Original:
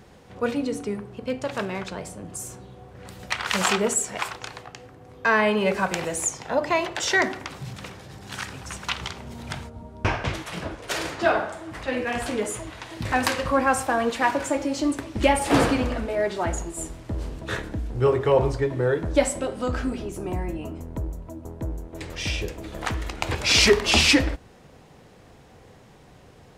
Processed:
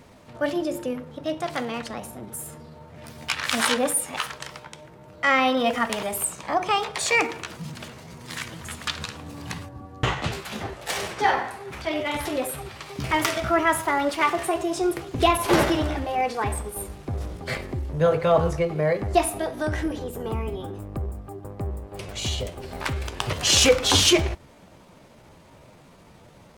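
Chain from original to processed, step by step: pitch shift +3.5 st

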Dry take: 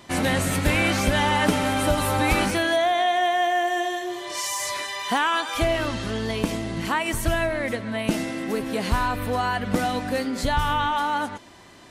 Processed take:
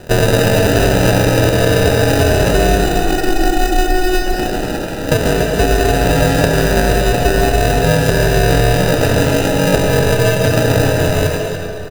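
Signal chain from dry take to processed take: HPF 82 Hz 24 dB/oct; resonant low shelf 450 Hz +8.5 dB, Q 3; notches 60/120/180/240/300/360 Hz; compressor, threshold -17 dBFS, peak gain reduction 11 dB; ring modulator 720 Hz; sample-rate reducer 1100 Hz, jitter 0%; echo 0.287 s -9 dB; on a send at -3 dB: reverb RT60 1.9 s, pre-delay 95 ms; on the sum: maximiser +11 dB; gain -1 dB

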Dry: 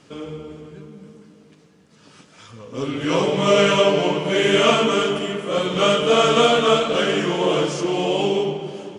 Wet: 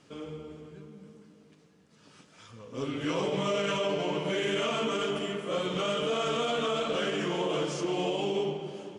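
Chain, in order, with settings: limiter -13 dBFS, peak gain reduction 10 dB; gain -8 dB

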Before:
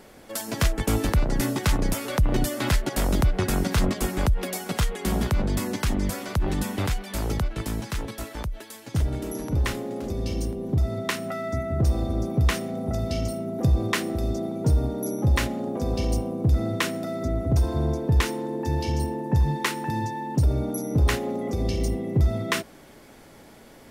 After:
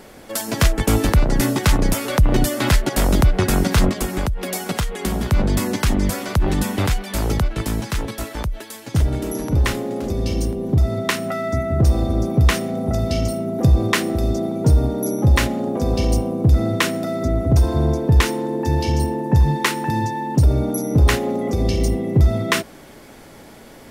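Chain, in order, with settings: 3.89–5.32 compressor 6:1, threshold -25 dBFS, peak gain reduction 8.5 dB; gain +6.5 dB

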